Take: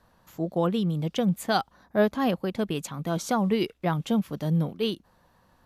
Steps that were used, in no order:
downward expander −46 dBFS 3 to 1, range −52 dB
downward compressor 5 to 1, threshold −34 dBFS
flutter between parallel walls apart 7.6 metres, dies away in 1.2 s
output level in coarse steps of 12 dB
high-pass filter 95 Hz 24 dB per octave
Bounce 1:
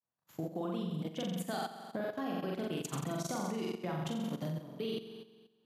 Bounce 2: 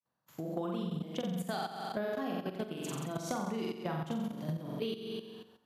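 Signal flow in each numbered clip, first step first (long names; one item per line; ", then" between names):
downward expander, then downward compressor, then flutter between parallel walls, then output level in coarse steps, then high-pass filter
flutter between parallel walls, then downward expander, then output level in coarse steps, then high-pass filter, then downward compressor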